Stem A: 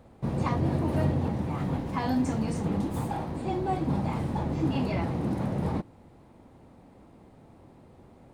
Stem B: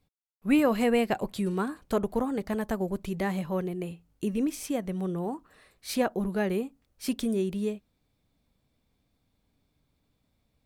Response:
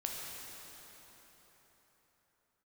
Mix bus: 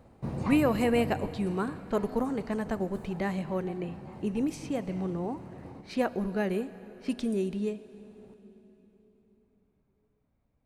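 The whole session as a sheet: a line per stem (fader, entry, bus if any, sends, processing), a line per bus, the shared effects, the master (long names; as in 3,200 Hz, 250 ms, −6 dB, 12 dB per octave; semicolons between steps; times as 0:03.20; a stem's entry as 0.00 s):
−2.5 dB, 0.00 s, send −21 dB, automatic ducking −20 dB, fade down 1.95 s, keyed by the second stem
−3.0 dB, 0.00 s, send −13 dB, low-pass that shuts in the quiet parts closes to 1,600 Hz, open at −22.5 dBFS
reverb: on, RT60 4.4 s, pre-delay 8 ms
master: notch filter 3,400 Hz, Q 13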